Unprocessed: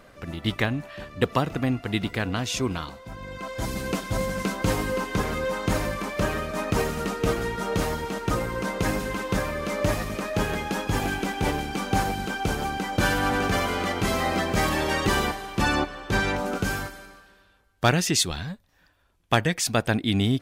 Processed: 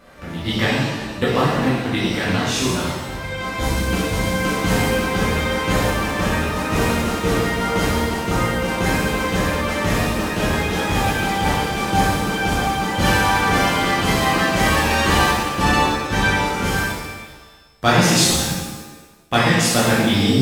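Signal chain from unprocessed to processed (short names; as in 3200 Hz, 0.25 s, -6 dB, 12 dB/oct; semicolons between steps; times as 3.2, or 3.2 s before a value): 3.02–3.68 sample leveller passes 1; shimmer reverb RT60 1.1 s, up +7 st, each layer -8 dB, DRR -8 dB; gain -1.5 dB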